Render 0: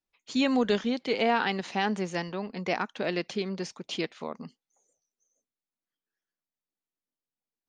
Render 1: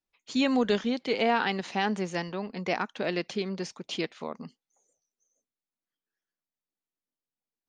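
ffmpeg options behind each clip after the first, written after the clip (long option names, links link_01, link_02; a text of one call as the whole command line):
ffmpeg -i in.wav -af anull out.wav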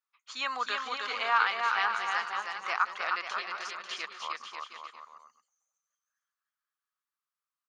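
ffmpeg -i in.wav -af "highpass=frequency=1200:width_type=q:width=5.6,aecho=1:1:310|542.5|716.9|847.7|945.7:0.631|0.398|0.251|0.158|0.1,volume=-4dB" out.wav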